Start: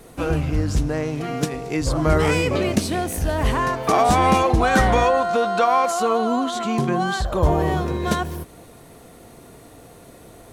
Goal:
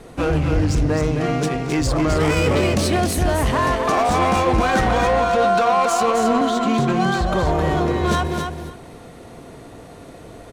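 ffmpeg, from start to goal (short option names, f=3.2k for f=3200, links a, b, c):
-filter_complex "[0:a]highshelf=f=7.5k:g=9,asettb=1/sr,asplit=3[a][b][c];[a]atrim=end=6.414[d];[b]atrim=start=6.41:end=8.01,asetpts=PTS-STARTPTS,afade=t=in:d=0.004:c=qsin,afade=t=out:st=1.596:d=0.004:c=qsin,acrossover=split=180|1500[e][f][g];[e]acompressor=threshold=-23dB:ratio=4[h];[f]acompressor=threshold=-22dB:ratio=4[i];[g]acompressor=threshold=-32dB:ratio=4[j];[h][i][j]amix=inputs=3:normalize=0[k];[c]atrim=start=8.006[l];[d][k]acrossfade=d=0.004:c1=hsin:c2=qsin[m];[m][l]acrossfade=d=0.004:c1=qsin:c2=hsin,alimiter=limit=-14dB:level=0:latency=1:release=19,asoftclip=type=hard:threshold=-18.5dB,adynamicsmooth=sensitivity=3.5:basefreq=4.8k,aecho=1:1:264|528|792:0.531|0.0903|0.0153,volume=4.5dB"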